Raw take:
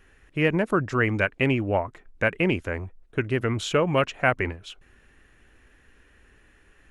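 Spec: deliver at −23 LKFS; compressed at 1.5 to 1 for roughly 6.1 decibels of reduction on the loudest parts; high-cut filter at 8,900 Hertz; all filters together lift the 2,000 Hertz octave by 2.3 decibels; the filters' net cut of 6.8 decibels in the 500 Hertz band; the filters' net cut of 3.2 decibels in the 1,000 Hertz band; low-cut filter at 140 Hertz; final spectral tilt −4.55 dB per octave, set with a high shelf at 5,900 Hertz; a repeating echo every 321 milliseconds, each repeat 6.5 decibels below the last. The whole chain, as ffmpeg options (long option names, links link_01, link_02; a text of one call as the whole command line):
ffmpeg -i in.wav -af "highpass=140,lowpass=8900,equalizer=frequency=500:width_type=o:gain=-8,equalizer=frequency=1000:width_type=o:gain=-4,equalizer=frequency=2000:width_type=o:gain=4,highshelf=frequency=5900:gain=6.5,acompressor=threshold=-34dB:ratio=1.5,aecho=1:1:321|642|963|1284|1605|1926:0.473|0.222|0.105|0.0491|0.0231|0.0109,volume=7.5dB" out.wav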